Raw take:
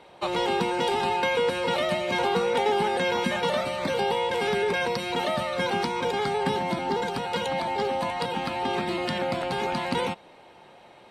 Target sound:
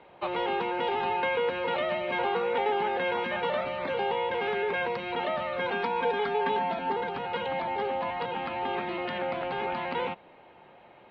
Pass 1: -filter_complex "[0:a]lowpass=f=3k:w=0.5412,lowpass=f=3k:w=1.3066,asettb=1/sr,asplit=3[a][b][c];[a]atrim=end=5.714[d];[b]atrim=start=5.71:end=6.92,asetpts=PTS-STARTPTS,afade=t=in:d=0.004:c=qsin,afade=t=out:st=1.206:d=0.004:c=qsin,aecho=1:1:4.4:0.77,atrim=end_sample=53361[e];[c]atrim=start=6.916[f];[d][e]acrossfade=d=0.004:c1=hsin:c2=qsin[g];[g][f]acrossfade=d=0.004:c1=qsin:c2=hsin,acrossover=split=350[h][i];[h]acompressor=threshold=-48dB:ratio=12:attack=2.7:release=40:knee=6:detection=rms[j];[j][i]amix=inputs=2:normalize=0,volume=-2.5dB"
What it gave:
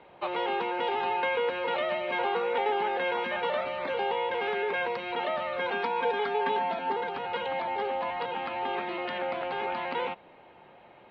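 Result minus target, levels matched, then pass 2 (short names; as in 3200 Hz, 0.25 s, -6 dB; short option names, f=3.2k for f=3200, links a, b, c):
compressor: peak gain reduction +8.5 dB
-filter_complex "[0:a]lowpass=f=3k:w=0.5412,lowpass=f=3k:w=1.3066,asettb=1/sr,asplit=3[a][b][c];[a]atrim=end=5.714[d];[b]atrim=start=5.71:end=6.92,asetpts=PTS-STARTPTS,afade=t=in:d=0.004:c=qsin,afade=t=out:st=1.206:d=0.004:c=qsin,aecho=1:1:4.4:0.77,atrim=end_sample=53361[e];[c]atrim=start=6.916[f];[d][e]acrossfade=d=0.004:c1=hsin:c2=qsin[g];[g][f]acrossfade=d=0.004:c1=qsin:c2=hsin,acrossover=split=350[h][i];[h]acompressor=threshold=-38.5dB:ratio=12:attack=2.7:release=40:knee=6:detection=rms[j];[j][i]amix=inputs=2:normalize=0,volume=-2.5dB"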